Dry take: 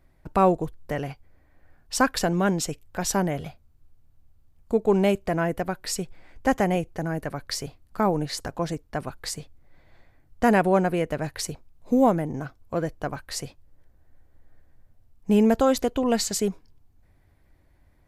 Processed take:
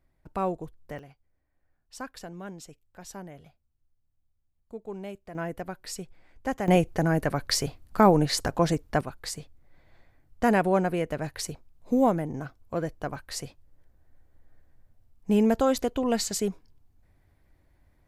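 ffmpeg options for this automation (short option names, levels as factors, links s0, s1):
-af "asetnsamples=n=441:p=0,asendcmd='0.99 volume volume -17.5dB;5.35 volume volume -8dB;6.68 volume volume 4.5dB;9.01 volume volume -3dB',volume=0.335"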